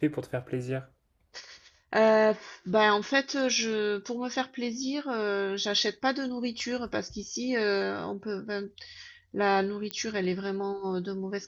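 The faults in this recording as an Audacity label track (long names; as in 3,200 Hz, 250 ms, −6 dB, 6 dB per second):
9.910000	9.910000	click −17 dBFS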